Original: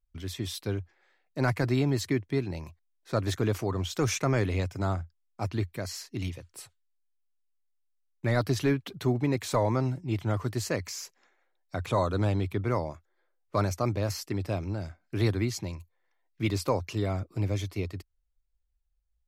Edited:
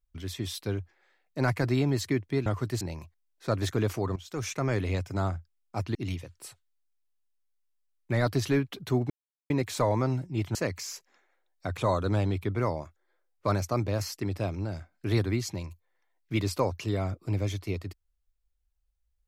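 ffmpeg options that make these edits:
-filter_complex "[0:a]asplit=7[s0][s1][s2][s3][s4][s5][s6];[s0]atrim=end=2.462[s7];[s1]atrim=start=10.288:end=10.642[s8];[s2]atrim=start=2.458:end=3.81,asetpts=PTS-STARTPTS,afade=t=out:st=1.348:d=0.004:c=hsin:silence=0.177828[s9];[s3]atrim=start=3.81:end=5.602,asetpts=PTS-STARTPTS,afade=t=in:d=1.03:c=qsin:silence=0.177828[s10];[s4]atrim=start=6.088:end=9.24,asetpts=PTS-STARTPTS,afade=t=out:st=3.148:d=0.004:c=hsin,apad=pad_dur=0.4[s11];[s5]atrim=start=9.24:end=10.292,asetpts=PTS-STARTPTS,afade=t=in:d=0.004:c=hsin[s12];[s6]atrim=start=10.638[s13];[s7][s8]acrossfade=d=0.004:c1=hsin:c2=hsin[s14];[s9][s10]concat=n=2:v=0:a=1[s15];[s14][s15]acrossfade=d=0.004:c1=hsin:c2=hsin[s16];[s11][s12]concat=n=2:v=0:a=1[s17];[s16][s17]acrossfade=d=0.004:c1=hsin:c2=hsin[s18];[s18][s13]acrossfade=d=0.004:c1=hsin:c2=hsin"

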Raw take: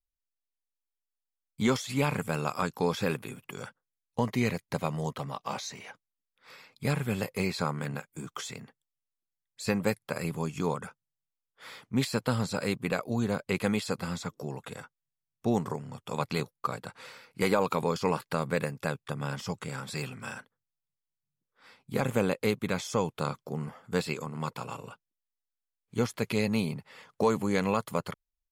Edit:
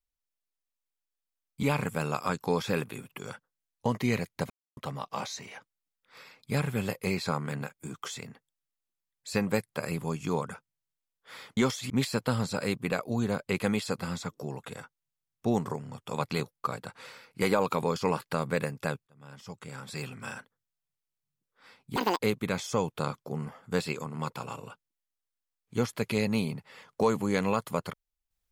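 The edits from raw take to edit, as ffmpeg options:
-filter_complex "[0:a]asplit=9[s0][s1][s2][s3][s4][s5][s6][s7][s8];[s0]atrim=end=1.632[s9];[s1]atrim=start=1.958:end=4.83,asetpts=PTS-STARTPTS,afade=t=out:st=2.868:d=0.004:c=hsin[s10];[s2]atrim=start=4.83:end=5.1,asetpts=PTS-STARTPTS,volume=0[s11];[s3]atrim=start=5.1:end=11.902,asetpts=PTS-STARTPTS,afade=t=in:d=0.004:c=hsin[s12];[s4]atrim=start=1.628:end=1.962[s13];[s5]atrim=start=11.898:end=19.07,asetpts=PTS-STARTPTS,afade=t=out:st=7.168:d=0.004:c=hsin[s14];[s6]atrim=start=19.07:end=21.964,asetpts=PTS-STARTPTS,afade=t=in:d=1.19[s15];[s7]atrim=start=21.96:end=22.4,asetpts=PTS-STARTPTS,asetrate=82908,aresample=44100,atrim=end_sample=10321,asetpts=PTS-STARTPTS[s16];[s8]atrim=start=22.396[s17];[s10][s11][s12]concat=n=3:v=0:a=1[s18];[s9][s18]acrossfade=d=0.004:c1=hsin:c2=hsin[s19];[s19][s13]acrossfade=d=0.004:c1=hsin:c2=hsin[s20];[s14][s15]concat=n=2:v=0:a=1[s21];[s20][s21]acrossfade=d=0.004:c1=hsin:c2=hsin[s22];[s22][s16]acrossfade=d=0.004:c1=hsin:c2=hsin[s23];[s23][s17]acrossfade=d=0.004:c1=hsin:c2=hsin"

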